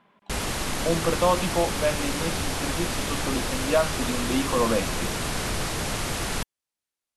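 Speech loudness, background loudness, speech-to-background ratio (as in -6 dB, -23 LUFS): -27.5 LUFS, -28.5 LUFS, 1.0 dB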